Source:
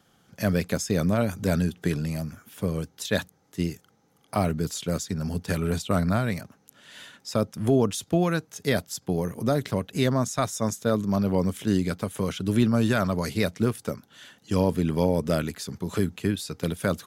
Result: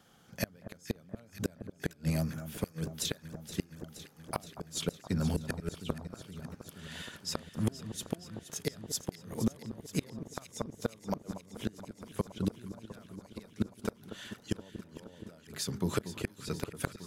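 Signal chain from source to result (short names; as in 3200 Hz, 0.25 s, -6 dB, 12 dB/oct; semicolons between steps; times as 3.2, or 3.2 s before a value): notches 50/100/150/200/250/300/350/400 Hz; flipped gate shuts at -17 dBFS, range -33 dB; echo with dull and thin repeats by turns 0.236 s, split 1300 Hz, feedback 85%, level -11.5 dB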